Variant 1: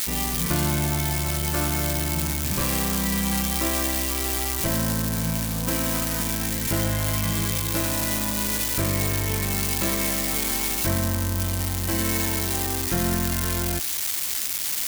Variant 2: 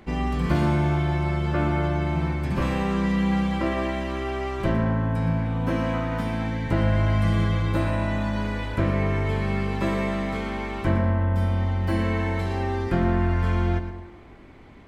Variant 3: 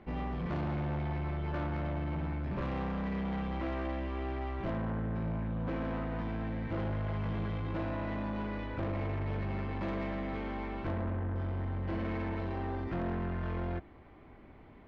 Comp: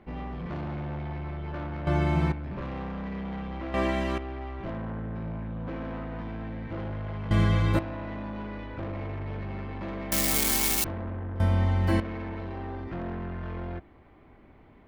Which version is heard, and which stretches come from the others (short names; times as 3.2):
3
1.87–2.32 from 2
3.74–4.18 from 2
7.31–7.79 from 2
10.12–10.84 from 1
11.4–12 from 2